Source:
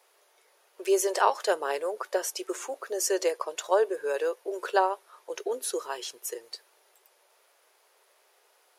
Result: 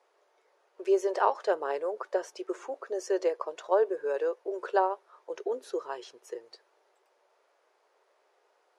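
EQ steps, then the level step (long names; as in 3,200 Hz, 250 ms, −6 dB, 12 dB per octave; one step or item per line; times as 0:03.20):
dynamic equaliser 7,900 Hz, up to −5 dB, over −46 dBFS, Q 1.4
high-frequency loss of the air 120 metres
parametric band 3,200 Hz −8 dB 2.1 octaves
0.0 dB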